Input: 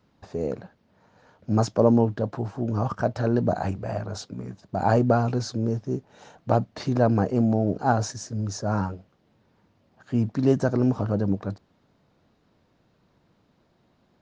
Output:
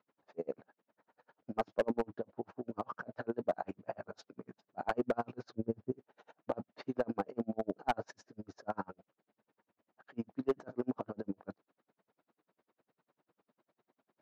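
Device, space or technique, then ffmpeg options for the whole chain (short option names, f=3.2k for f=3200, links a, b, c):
helicopter radio: -filter_complex "[0:a]highpass=310,lowpass=2.5k,aeval=exprs='val(0)*pow(10,-39*(0.5-0.5*cos(2*PI*10*n/s))/20)':c=same,asoftclip=type=hard:threshold=-20dB,asettb=1/sr,asplit=3[a][b][c];[a]atrim=end=5.494[d];[b]atrim=start=5.49:end=5.92,asetpts=PTS-STARTPTS,afade=t=in:d=0.004:c=qsin,afade=t=out:st=0.426:d=0.004:c=qsin,aemphasis=mode=reproduction:type=bsi[e];[c]atrim=start=5.916[f];[d][e]acrossfade=d=0.004:c1=hsin:c2=qsin[g];[g][f]acrossfade=d=0.004:c1=qsin:c2=hsin,volume=-3dB"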